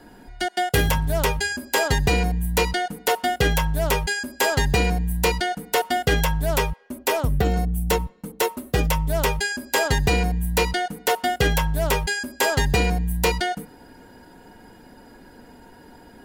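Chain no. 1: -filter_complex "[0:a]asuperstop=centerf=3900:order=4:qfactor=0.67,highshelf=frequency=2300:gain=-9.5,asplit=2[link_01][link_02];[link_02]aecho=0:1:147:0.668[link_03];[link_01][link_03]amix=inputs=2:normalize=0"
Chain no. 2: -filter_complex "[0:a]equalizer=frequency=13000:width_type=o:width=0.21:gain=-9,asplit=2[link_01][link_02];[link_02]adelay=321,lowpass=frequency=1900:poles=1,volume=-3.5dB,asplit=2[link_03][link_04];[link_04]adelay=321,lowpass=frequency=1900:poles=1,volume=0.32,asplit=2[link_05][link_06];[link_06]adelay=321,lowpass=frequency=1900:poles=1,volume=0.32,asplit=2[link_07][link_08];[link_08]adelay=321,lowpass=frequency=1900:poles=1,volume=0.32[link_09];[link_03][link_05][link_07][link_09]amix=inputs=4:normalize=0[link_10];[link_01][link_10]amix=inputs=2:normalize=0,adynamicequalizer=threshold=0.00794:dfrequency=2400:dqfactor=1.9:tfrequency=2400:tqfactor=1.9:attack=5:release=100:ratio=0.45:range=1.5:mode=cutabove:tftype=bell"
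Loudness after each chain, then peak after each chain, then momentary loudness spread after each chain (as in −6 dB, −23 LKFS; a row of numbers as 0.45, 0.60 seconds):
−23.0, −22.0 LKFS; −8.0, −7.5 dBFS; 6, 4 LU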